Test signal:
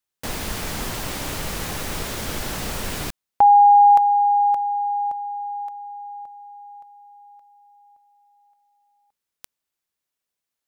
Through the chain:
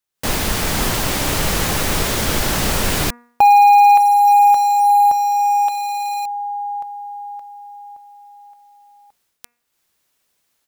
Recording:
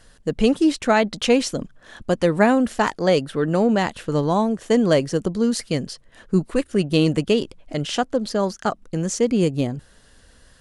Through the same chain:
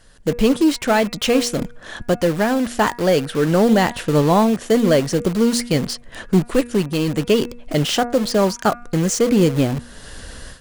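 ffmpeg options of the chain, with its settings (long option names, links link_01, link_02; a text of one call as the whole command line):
ffmpeg -i in.wav -filter_complex "[0:a]aeval=exprs='0.631*(cos(1*acos(clip(val(0)/0.631,-1,1)))-cos(1*PI/2))+0.0447*(cos(3*acos(clip(val(0)/0.631,-1,1)))-cos(3*PI/2))+0.0708*(cos(5*acos(clip(val(0)/0.631,-1,1)))-cos(5*PI/2))':channel_layout=same,dynaudnorm=framelen=140:gausssize=3:maxgain=16.5dB,asplit=2[link_01][link_02];[link_02]aeval=exprs='(mod(6.68*val(0)+1,2)-1)/6.68':channel_layout=same,volume=-8dB[link_03];[link_01][link_03]amix=inputs=2:normalize=0,bandreject=frequency=239.5:width_type=h:width=4,bandreject=frequency=479:width_type=h:width=4,bandreject=frequency=718.5:width_type=h:width=4,bandreject=frequency=958:width_type=h:width=4,bandreject=frequency=1197.5:width_type=h:width=4,bandreject=frequency=1437:width_type=h:width=4,bandreject=frequency=1676.5:width_type=h:width=4,bandreject=frequency=1916:width_type=h:width=4,bandreject=frequency=2155.5:width_type=h:width=4,bandreject=frequency=2395:width_type=h:width=4,bandreject=frequency=2634.5:width_type=h:width=4,volume=-5.5dB" out.wav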